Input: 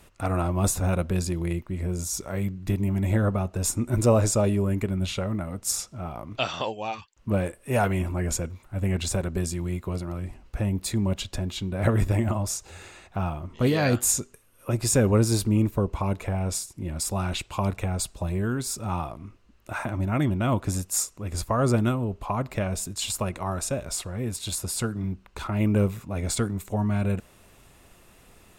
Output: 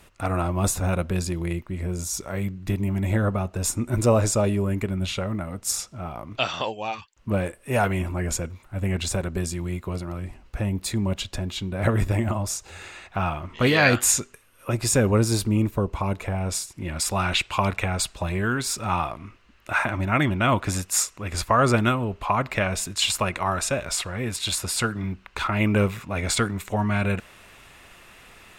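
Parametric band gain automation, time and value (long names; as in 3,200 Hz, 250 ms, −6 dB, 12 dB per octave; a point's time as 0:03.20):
parametric band 2,100 Hz 2.6 octaves
0:12.57 +3.5 dB
0:13.36 +12 dB
0:14.04 +12 dB
0:15.03 +4 dB
0:16.42 +4 dB
0:16.86 +12 dB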